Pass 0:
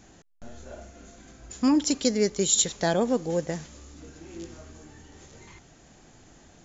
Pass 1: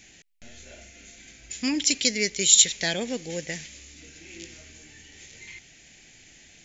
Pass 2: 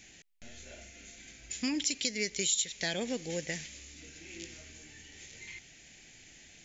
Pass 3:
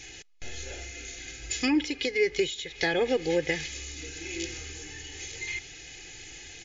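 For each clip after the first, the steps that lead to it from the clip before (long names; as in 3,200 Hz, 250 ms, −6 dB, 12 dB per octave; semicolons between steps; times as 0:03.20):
high shelf with overshoot 1,600 Hz +11 dB, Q 3; level −5.5 dB
downward compressor 4 to 1, threshold −26 dBFS, peak gain reduction 13 dB; level −3 dB
comb filter 2.4 ms, depth 93%; treble cut that deepens with the level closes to 1,900 Hz, closed at −27.5 dBFS; level +8.5 dB; MP3 48 kbit/s 16,000 Hz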